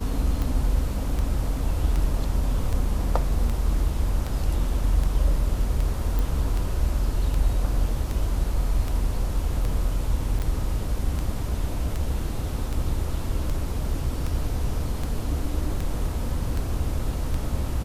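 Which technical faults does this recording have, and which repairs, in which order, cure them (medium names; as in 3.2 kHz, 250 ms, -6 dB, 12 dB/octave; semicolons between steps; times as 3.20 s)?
tick 78 rpm
6.19 s: pop
10.39–10.40 s: dropout 8.7 ms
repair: de-click; interpolate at 10.39 s, 8.7 ms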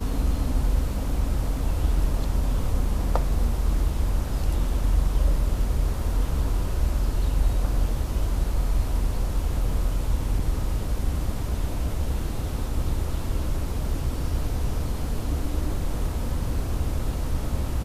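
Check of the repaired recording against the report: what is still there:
nothing left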